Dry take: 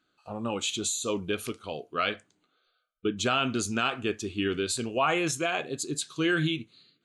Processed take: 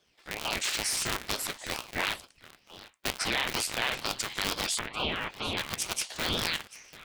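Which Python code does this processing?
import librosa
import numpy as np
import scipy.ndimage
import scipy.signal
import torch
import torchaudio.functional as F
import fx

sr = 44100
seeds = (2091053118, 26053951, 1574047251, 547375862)

p1 = fx.cycle_switch(x, sr, every=3, mode='inverted')
p2 = scipy.signal.sosfilt(scipy.signal.butter(2, 1100.0, 'highpass', fs=sr, output='sos'), p1)
p3 = fx.over_compress(p2, sr, threshold_db=-37.0, ratio=-1.0)
p4 = p2 + (p3 * librosa.db_to_amplitude(2.0))
p5 = fx.lowpass(p4, sr, hz=2100.0, slope=24, at=(4.79, 5.57))
p6 = p5 + fx.echo_single(p5, sr, ms=742, db=-18.5, dry=0)
y = fx.ring_lfo(p6, sr, carrier_hz=1200.0, swing_pct=60, hz=2.2)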